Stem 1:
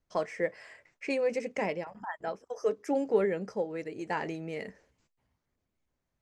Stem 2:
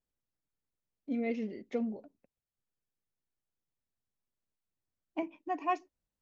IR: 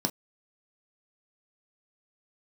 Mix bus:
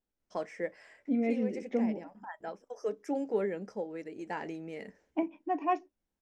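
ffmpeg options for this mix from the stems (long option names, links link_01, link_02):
-filter_complex "[0:a]adelay=200,volume=-6.5dB,asplit=2[link_01][link_02];[link_02]volume=-19.5dB[link_03];[1:a]highshelf=frequency=3700:gain=-10.5,volume=1dB,asplit=3[link_04][link_05][link_06];[link_05]volume=-18.5dB[link_07];[link_06]apad=whole_len=282994[link_08];[link_01][link_08]sidechaincompress=threshold=-39dB:ratio=3:attack=16:release=615[link_09];[2:a]atrim=start_sample=2205[link_10];[link_03][link_07]amix=inputs=2:normalize=0[link_11];[link_11][link_10]afir=irnorm=-1:irlink=0[link_12];[link_09][link_04][link_12]amix=inputs=3:normalize=0"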